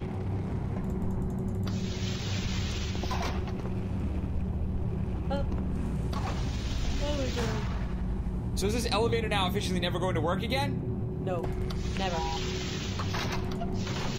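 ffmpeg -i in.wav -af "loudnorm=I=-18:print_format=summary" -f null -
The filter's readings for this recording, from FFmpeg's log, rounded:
Input Integrated:    -31.8 LUFS
Input True Peak:     -14.2 dBTP
Input LRA:             2.8 LU
Input Threshold:     -41.8 LUFS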